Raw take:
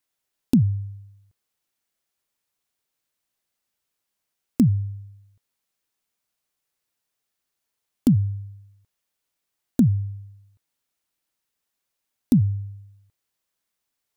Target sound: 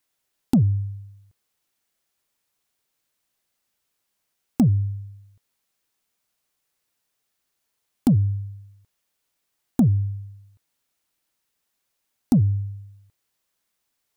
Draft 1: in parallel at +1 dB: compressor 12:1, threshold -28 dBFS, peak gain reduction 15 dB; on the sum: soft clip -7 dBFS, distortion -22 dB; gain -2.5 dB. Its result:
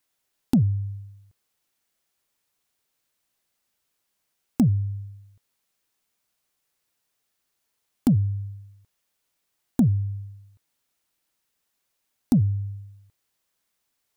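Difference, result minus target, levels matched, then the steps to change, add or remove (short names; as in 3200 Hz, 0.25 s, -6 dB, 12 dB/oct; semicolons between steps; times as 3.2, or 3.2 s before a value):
compressor: peak gain reduction +8.5 dB
change: compressor 12:1, threshold -18.5 dBFS, peak gain reduction 6.5 dB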